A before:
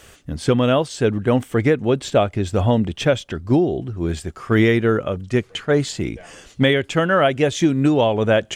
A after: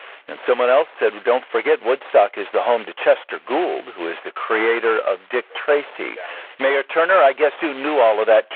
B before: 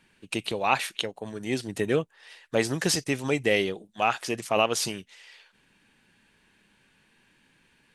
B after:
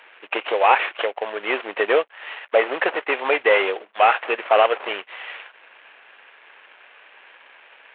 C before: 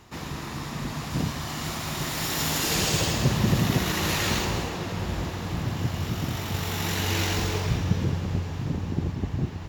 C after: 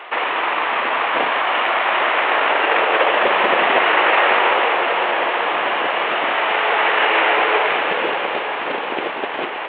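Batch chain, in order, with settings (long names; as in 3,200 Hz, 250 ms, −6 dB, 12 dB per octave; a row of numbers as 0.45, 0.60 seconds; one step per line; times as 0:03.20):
variable-slope delta modulation 16 kbit/s
high-pass filter 500 Hz 24 dB per octave
in parallel at −1 dB: downward compressor, threshold −36 dBFS
on the sum: normalise the peak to −2 dBFS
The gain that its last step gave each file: +6.0, +10.5, +15.0 decibels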